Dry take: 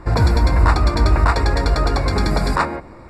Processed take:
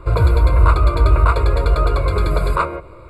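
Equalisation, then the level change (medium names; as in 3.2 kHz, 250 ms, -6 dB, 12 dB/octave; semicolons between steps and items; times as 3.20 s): dynamic bell 5.1 kHz, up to -5 dB, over -39 dBFS, Q 0.83; static phaser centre 1.2 kHz, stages 8; +3.0 dB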